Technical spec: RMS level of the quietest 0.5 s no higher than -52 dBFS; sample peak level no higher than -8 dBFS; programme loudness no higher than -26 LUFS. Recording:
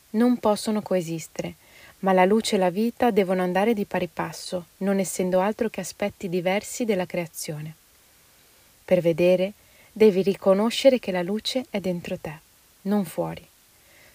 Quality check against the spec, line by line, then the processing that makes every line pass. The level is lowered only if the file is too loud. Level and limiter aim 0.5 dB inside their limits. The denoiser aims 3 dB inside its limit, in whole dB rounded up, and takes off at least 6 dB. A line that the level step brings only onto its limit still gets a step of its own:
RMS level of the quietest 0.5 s -57 dBFS: OK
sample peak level -5.0 dBFS: fail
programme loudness -24.0 LUFS: fail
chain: gain -2.5 dB; limiter -8.5 dBFS

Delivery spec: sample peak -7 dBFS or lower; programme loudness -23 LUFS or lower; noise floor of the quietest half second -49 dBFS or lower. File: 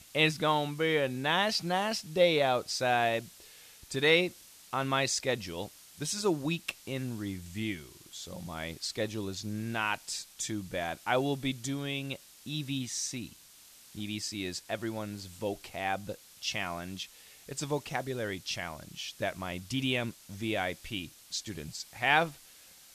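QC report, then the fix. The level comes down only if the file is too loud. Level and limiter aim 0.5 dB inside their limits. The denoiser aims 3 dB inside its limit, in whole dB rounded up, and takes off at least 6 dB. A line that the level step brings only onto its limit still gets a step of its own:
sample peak -10.5 dBFS: OK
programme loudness -32.5 LUFS: OK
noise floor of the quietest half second -56 dBFS: OK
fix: none

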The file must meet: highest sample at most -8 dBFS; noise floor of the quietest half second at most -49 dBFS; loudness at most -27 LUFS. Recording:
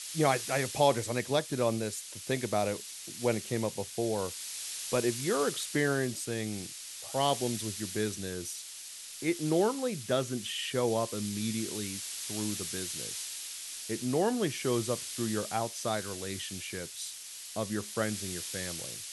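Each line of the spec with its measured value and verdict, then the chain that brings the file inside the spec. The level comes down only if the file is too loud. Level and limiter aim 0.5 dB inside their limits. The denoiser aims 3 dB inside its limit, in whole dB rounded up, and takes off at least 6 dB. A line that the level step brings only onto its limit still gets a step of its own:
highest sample -12.5 dBFS: OK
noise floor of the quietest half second -45 dBFS: fail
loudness -32.5 LUFS: OK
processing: denoiser 7 dB, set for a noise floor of -45 dBFS

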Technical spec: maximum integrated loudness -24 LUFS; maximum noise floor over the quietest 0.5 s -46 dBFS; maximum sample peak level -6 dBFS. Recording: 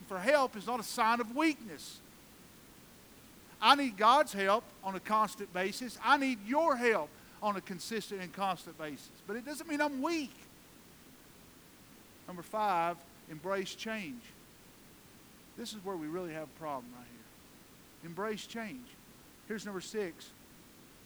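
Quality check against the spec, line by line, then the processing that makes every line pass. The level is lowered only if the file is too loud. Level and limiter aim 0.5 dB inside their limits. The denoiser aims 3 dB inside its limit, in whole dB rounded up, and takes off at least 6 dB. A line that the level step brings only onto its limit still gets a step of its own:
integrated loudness -33.5 LUFS: OK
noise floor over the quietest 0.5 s -58 dBFS: OK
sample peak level -10.0 dBFS: OK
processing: none

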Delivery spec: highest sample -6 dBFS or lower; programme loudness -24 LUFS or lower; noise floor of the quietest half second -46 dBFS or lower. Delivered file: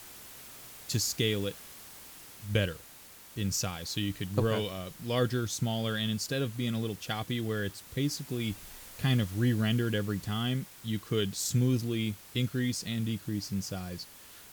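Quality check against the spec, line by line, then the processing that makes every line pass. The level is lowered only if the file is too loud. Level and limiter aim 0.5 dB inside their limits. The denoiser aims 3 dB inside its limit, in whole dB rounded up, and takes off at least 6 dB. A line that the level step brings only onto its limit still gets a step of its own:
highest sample -13.5 dBFS: OK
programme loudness -32.0 LUFS: OK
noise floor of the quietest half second -52 dBFS: OK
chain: none

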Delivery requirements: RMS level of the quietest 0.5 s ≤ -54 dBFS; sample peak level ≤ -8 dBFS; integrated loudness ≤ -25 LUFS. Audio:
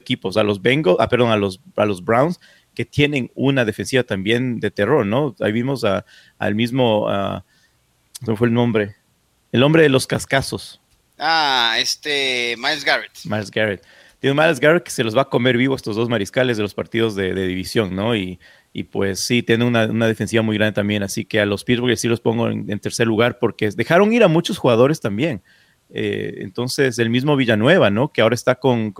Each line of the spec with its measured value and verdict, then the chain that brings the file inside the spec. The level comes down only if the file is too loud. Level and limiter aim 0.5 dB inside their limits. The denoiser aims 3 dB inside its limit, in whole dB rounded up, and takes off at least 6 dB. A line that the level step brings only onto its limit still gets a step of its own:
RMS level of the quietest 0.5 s -62 dBFS: OK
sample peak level -2.0 dBFS: fail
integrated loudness -18.0 LUFS: fail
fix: gain -7.5 dB

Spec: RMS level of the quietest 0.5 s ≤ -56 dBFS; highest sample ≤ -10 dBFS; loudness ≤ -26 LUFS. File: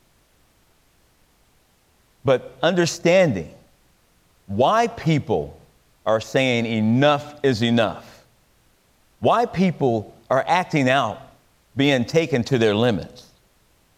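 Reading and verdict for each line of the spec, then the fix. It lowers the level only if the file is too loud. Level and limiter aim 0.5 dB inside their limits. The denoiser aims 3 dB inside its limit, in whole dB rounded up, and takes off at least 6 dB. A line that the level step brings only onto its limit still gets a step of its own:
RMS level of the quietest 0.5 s -60 dBFS: OK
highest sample -5.5 dBFS: fail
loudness -20.5 LUFS: fail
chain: gain -6 dB

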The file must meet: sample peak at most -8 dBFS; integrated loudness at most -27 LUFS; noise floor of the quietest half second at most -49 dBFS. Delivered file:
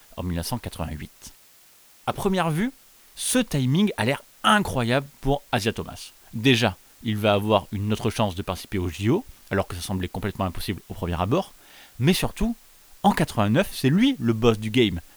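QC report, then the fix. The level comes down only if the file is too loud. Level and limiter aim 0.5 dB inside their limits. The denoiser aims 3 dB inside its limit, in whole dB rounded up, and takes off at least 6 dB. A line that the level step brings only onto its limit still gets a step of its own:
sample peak -3.5 dBFS: fail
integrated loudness -24.0 LUFS: fail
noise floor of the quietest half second -54 dBFS: OK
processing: gain -3.5 dB; limiter -8.5 dBFS

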